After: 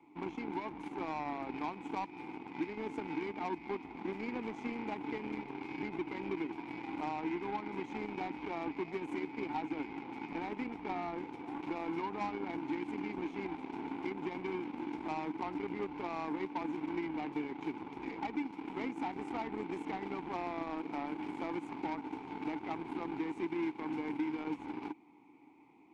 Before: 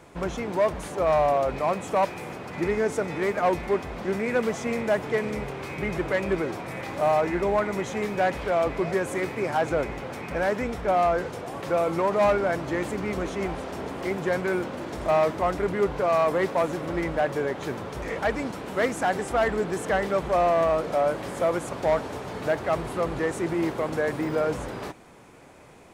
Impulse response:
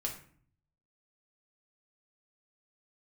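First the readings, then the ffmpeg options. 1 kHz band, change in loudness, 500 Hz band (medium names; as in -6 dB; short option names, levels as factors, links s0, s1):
-12.5 dB, -13.5 dB, -18.5 dB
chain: -filter_complex "[0:a]asplit=3[s0][s1][s2];[s0]bandpass=f=300:t=q:w=8,volume=1[s3];[s1]bandpass=f=870:t=q:w=8,volume=0.501[s4];[s2]bandpass=f=2240:t=q:w=8,volume=0.355[s5];[s3][s4][s5]amix=inputs=3:normalize=0,acrossover=split=210|1300[s6][s7][s8];[s6]acompressor=threshold=0.00178:ratio=4[s9];[s7]acompressor=threshold=0.00631:ratio=4[s10];[s8]acompressor=threshold=0.00178:ratio=4[s11];[s9][s10][s11]amix=inputs=3:normalize=0,aeval=exprs='0.0251*(cos(1*acos(clip(val(0)/0.0251,-1,1)))-cos(1*PI/2))+0.002*(cos(7*acos(clip(val(0)/0.0251,-1,1)))-cos(7*PI/2))':c=same,volume=2.24"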